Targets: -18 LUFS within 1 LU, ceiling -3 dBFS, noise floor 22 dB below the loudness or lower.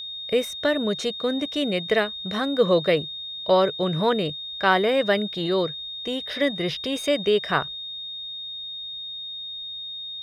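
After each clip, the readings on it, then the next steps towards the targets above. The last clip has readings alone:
steady tone 3.7 kHz; tone level -32 dBFS; loudness -24.5 LUFS; peak level -6.0 dBFS; loudness target -18.0 LUFS
-> band-stop 3.7 kHz, Q 30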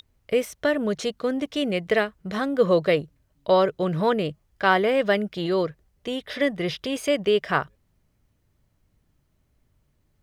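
steady tone not found; loudness -24.0 LUFS; peak level -6.0 dBFS; loudness target -18.0 LUFS
-> trim +6 dB; peak limiter -3 dBFS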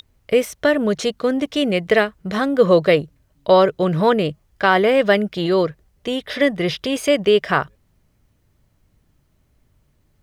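loudness -18.5 LUFS; peak level -3.0 dBFS; noise floor -63 dBFS

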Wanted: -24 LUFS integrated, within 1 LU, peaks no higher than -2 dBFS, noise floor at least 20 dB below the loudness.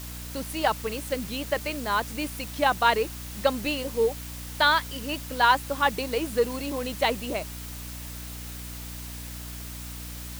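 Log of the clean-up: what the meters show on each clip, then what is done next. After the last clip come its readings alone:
hum 60 Hz; highest harmonic 300 Hz; hum level -37 dBFS; noise floor -38 dBFS; noise floor target -48 dBFS; loudness -27.5 LUFS; peak level -8.0 dBFS; loudness target -24.0 LUFS
-> de-hum 60 Hz, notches 5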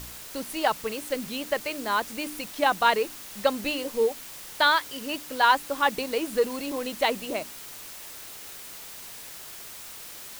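hum not found; noise floor -42 dBFS; noise floor target -47 dBFS
-> noise print and reduce 6 dB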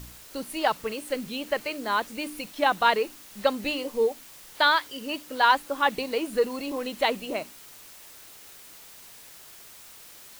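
noise floor -48 dBFS; loudness -26.5 LUFS; peak level -8.0 dBFS; loudness target -24.0 LUFS
-> trim +2.5 dB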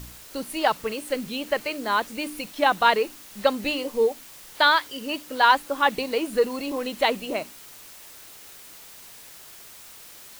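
loudness -24.0 LUFS; peak level -5.5 dBFS; noise floor -46 dBFS

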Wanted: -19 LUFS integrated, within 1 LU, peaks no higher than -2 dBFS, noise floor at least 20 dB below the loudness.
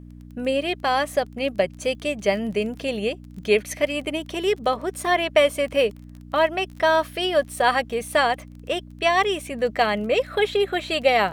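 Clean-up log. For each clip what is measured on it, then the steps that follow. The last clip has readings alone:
tick rate 26 per s; hum 60 Hz; highest harmonic 300 Hz; hum level -40 dBFS; loudness -23.0 LUFS; peak level -5.0 dBFS; loudness target -19.0 LUFS
-> de-click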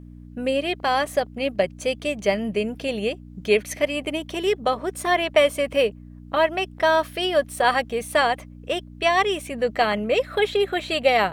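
tick rate 1.1 per s; hum 60 Hz; highest harmonic 300 Hz; hum level -40 dBFS
-> de-hum 60 Hz, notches 5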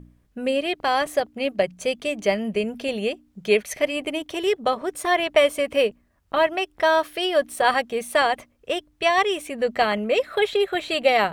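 hum not found; loudness -23.0 LUFS; peak level -5.0 dBFS; loudness target -19.0 LUFS
-> trim +4 dB; peak limiter -2 dBFS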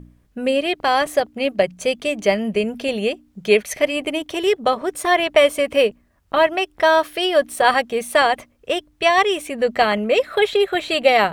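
loudness -19.0 LUFS; peak level -2.0 dBFS; noise floor -59 dBFS

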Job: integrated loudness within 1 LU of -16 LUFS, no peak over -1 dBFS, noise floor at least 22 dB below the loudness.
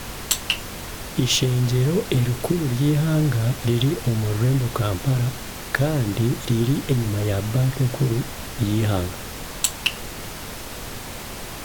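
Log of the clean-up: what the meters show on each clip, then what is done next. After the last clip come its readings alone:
noise floor -35 dBFS; noise floor target -45 dBFS; loudness -22.5 LUFS; peak level -2.0 dBFS; loudness target -16.0 LUFS
-> noise print and reduce 10 dB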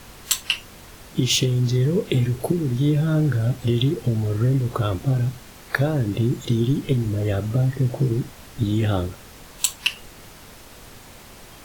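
noise floor -44 dBFS; noise floor target -45 dBFS
-> noise print and reduce 6 dB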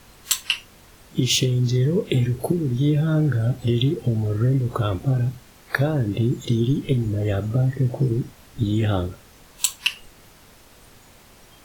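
noise floor -50 dBFS; loudness -22.5 LUFS; peak level -2.5 dBFS; loudness target -16.0 LUFS
-> trim +6.5 dB; peak limiter -1 dBFS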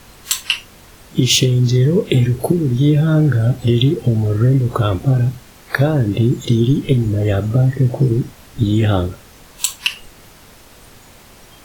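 loudness -16.5 LUFS; peak level -1.0 dBFS; noise floor -44 dBFS

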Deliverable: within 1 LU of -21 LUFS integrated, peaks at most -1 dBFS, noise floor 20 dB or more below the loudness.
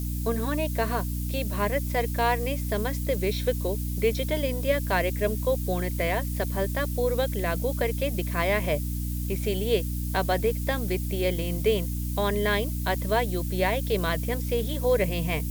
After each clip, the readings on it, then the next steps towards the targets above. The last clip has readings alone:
hum 60 Hz; highest harmonic 300 Hz; hum level -27 dBFS; noise floor -30 dBFS; noise floor target -47 dBFS; loudness -27.0 LUFS; peak level -11.0 dBFS; loudness target -21.0 LUFS
-> de-hum 60 Hz, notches 5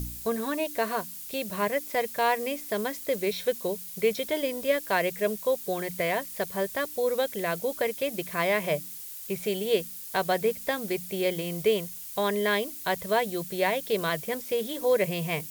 hum not found; noise floor -41 dBFS; noise floor target -49 dBFS
-> noise reduction 8 dB, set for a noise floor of -41 dBFS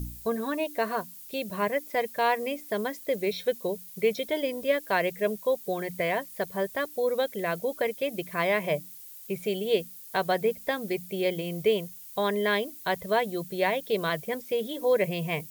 noise floor -46 dBFS; noise floor target -49 dBFS
-> noise reduction 6 dB, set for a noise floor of -46 dBFS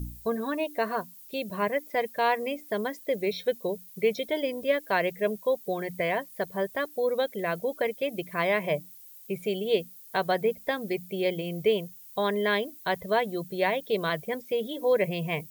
noise floor -49 dBFS; loudness -29.0 LUFS; peak level -12.0 dBFS; loudness target -21.0 LUFS
-> trim +8 dB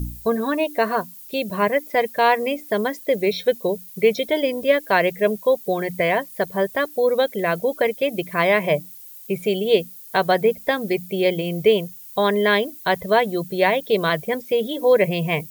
loudness -21.0 LUFS; peak level -4.0 dBFS; noise floor -41 dBFS

